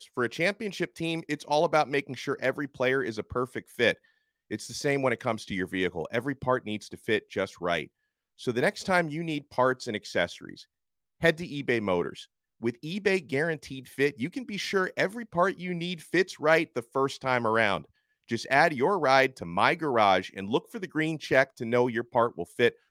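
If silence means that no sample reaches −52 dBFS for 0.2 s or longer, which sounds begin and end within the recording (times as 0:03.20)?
0:04.51–0:07.87
0:08.39–0:10.64
0:11.21–0:12.25
0:12.61–0:17.85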